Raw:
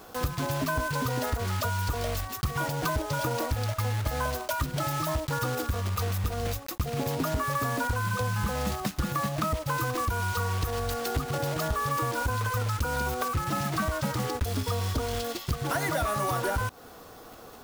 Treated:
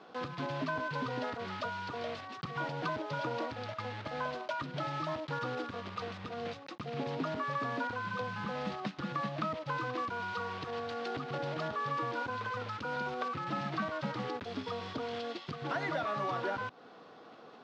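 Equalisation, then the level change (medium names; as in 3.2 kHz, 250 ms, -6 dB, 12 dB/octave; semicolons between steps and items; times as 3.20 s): high-pass 150 Hz 24 dB/octave; low-pass 4.2 kHz 24 dB/octave; -5.5 dB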